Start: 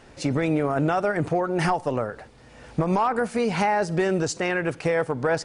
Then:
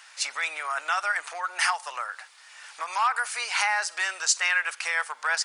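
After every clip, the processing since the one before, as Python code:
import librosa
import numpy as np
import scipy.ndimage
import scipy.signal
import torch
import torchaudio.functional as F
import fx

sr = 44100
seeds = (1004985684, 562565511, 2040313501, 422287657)

y = scipy.signal.sosfilt(scipy.signal.butter(4, 1100.0, 'highpass', fs=sr, output='sos'), x)
y = fx.high_shelf(y, sr, hz=4000.0, db=7.0)
y = y * librosa.db_to_amplitude(4.0)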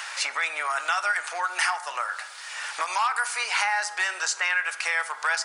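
y = fx.rev_fdn(x, sr, rt60_s=0.88, lf_ratio=0.95, hf_ratio=0.4, size_ms=49.0, drr_db=10.0)
y = fx.band_squash(y, sr, depth_pct=70)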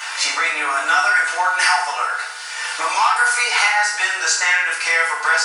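y = fx.rev_fdn(x, sr, rt60_s=0.62, lf_ratio=1.45, hf_ratio=1.0, size_ms=20.0, drr_db=-8.5)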